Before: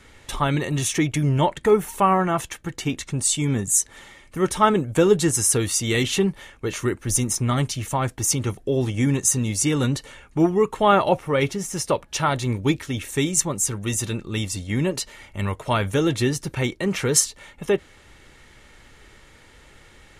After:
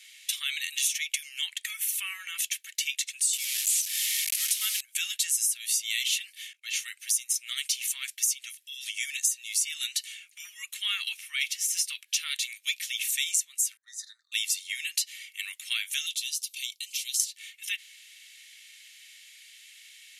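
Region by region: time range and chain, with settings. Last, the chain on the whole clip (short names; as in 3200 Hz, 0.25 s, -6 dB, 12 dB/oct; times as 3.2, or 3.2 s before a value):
3.33–4.81 delta modulation 64 kbps, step -25 dBFS + high shelf 5100 Hz +7.5 dB
6.53–7 expander -45 dBFS + high shelf 9000 Hz -8 dB
13.77–14.32 Chebyshev band-stop 1800–4000 Hz, order 3 + tape spacing loss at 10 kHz 25 dB + three-band expander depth 70%
16.06–17.2 inverse Chebyshev high-pass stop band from 940 Hz, stop band 60 dB + compressor, threshold -32 dBFS
whole clip: steep high-pass 2300 Hz 36 dB/oct; bell 12000 Hz +9 dB 0.24 oct; compressor 12:1, threshold -29 dBFS; gain +5.5 dB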